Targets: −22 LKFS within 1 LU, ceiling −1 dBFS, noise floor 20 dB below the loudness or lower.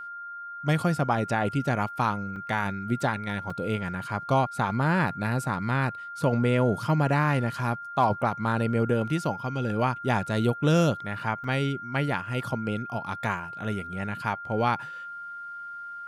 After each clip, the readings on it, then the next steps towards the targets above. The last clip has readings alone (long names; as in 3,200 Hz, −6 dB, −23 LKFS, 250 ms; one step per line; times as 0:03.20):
number of dropouts 3; longest dropout 3.9 ms; interfering tone 1,400 Hz; level of the tone −36 dBFS; integrated loudness −27.0 LKFS; sample peak −12.0 dBFS; target loudness −22.0 LKFS
→ repair the gap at 0:02.36/0:03.50/0:11.44, 3.9 ms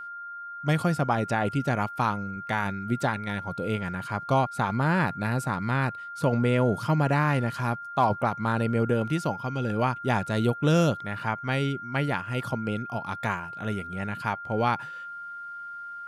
number of dropouts 0; interfering tone 1,400 Hz; level of the tone −36 dBFS
→ notch filter 1,400 Hz, Q 30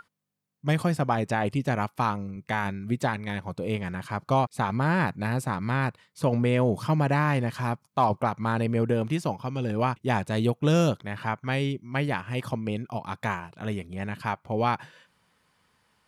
interfering tone none found; integrated loudness −27.5 LKFS; sample peak −12.5 dBFS; target loudness −22.0 LKFS
→ level +5.5 dB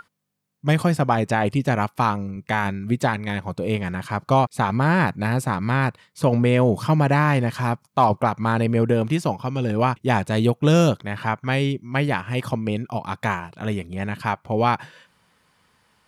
integrated loudness −22.0 LKFS; sample peak −7.0 dBFS; background noise floor −66 dBFS